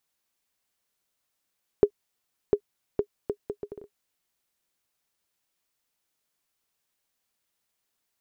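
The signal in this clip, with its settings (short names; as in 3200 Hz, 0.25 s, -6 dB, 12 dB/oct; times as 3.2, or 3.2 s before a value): bouncing ball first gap 0.70 s, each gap 0.66, 411 Hz, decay 74 ms -6.5 dBFS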